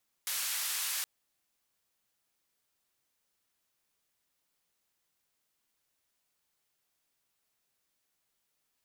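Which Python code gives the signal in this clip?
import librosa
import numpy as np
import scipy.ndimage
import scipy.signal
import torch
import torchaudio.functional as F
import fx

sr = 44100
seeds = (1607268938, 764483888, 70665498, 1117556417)

y = fx.band_noise(sr, seeds[0], length_s=0.77, low_hz=1300.0, high_hz=15000.0, level_db=-34.5)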